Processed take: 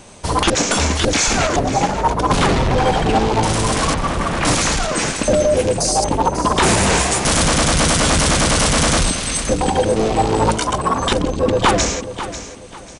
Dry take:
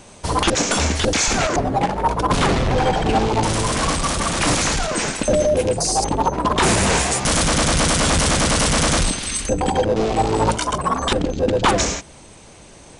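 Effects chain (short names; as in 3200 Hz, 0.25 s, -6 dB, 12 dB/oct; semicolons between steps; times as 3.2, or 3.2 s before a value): 3.94–4.45 LPF 2300 Hz 12 dB/oct; on a send: feedback echo 0.543 s, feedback 28%, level -12 dB; on the sum: gain +2 dB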